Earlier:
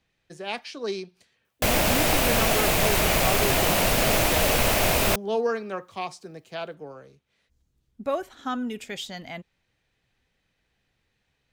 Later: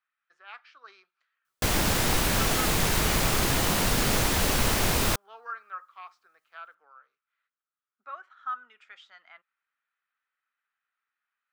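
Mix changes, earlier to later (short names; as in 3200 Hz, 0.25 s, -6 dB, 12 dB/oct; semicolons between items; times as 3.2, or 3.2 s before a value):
speech: add ladder band-pass 1400 Hz, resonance 75%; background: add fifteen-band EQ 630 Hz -10 dB, 2500 Hz -6 dB, 16000 Hz -6 dB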